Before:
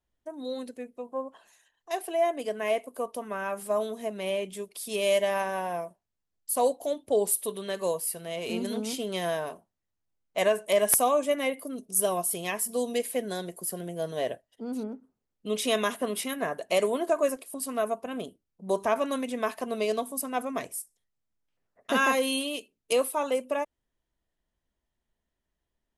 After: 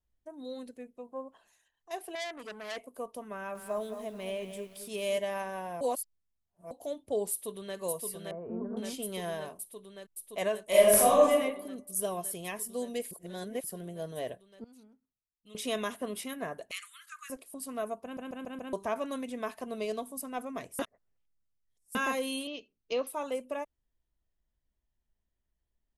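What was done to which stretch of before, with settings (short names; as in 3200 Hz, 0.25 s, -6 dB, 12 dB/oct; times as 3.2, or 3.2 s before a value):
2.15–2.77 core saturation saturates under 4000 Hz
3.33–5.18 lo-fi delay 0.22 s, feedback 35%, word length 8-bit, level -9 dB
5.81–6.71 reverse
7.31–7.78 echo throw 0.57 s, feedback 85%, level -3.5 dB
8.31–8.77 steep low-pass 1400 Hz
10.66–11.31 reverb throw, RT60 0.85 s, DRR -8 dB
13.11–13.64 reverse
14.64–15.55 passive tone stack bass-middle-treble 5-5-5
16.71–17.3 steep high-pass 1200 Hz 96 dB/oct
18.03 stutter in place 0.14 s, 5 plays
20.79–21.95 reverse
22.47–23.07 steep low-pass 6200 Hz 96 dB/oct
whole clip: low shelf 120 Hz +11.5 dB; gain -7.5 dB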